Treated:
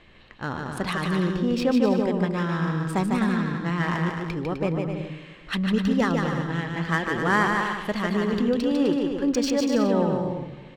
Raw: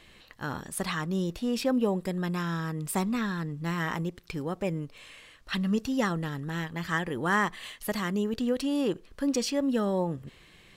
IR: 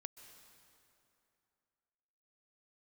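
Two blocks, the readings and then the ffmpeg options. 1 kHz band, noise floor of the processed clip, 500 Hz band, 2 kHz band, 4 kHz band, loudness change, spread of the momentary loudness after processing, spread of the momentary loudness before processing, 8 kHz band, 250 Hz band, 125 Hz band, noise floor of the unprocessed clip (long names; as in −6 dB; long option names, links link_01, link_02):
+6.0 dB, −46 dBFS, +6.0 dB, +5.5 dB, +3.5 dB, +5.5 dB, 9 LU, 10 LU, −1.0 dB, +6.0 dB, +6.0 dB, −56 dBFS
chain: -filter_complex "[0:a]asplit=2[link_01][link_02];[1:a]atrim=start_sample=2205[link_03];[link_02][link_03]afir=irnorm=-1:irlink=0,volume=0.5dB[link_04];[link_01][link_04]amix=inputs=2:normalize=0,adynamicsmooth=sensitivity=3:basefreq=3100,aecho=1:1:150|255|328.5|380|416:0.631|0.398|0.251|0.158|0.1"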